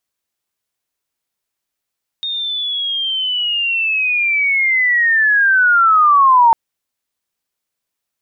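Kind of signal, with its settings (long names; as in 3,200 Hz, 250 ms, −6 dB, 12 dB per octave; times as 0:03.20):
glide linear 3,700 Hz → 900 Hz −19 dBFS → −6 dBFS 4.30 s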